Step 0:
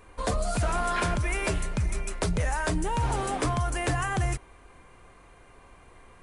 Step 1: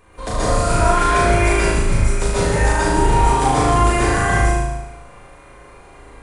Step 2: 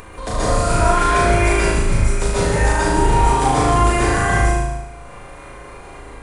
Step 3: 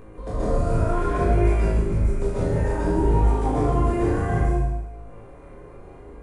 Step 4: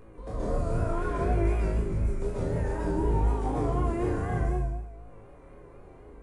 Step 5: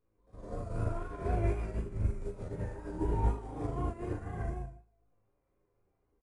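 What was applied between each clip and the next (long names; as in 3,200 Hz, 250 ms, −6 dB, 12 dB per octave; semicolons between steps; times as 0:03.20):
on a send: flutter between parallel walls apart 6.4 metres, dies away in 0.98 s; on the sum: dense smooth reverb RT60 0.73 s, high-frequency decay 0.6×, pre-delay 115 ms, DRR −7 dB
upward compression, threshold −28 dBFS
drawn EQ curve 460 Hz 0 dB, 800 Hz −8 dB, 4,000 Hz −18 dB; chorus effect 0.6 Hz, delay 18.5 ms, depth 8 ms
pitch vibrato 4 Hz 59 cents; level −6.5 dB
on a send: ambience of single reflections 37 ms −3 dB, 47 ms −4.5 dB; on the sum: expander for the loud parts 2.5 to 1, over −36 dBFS; level −3.5 dB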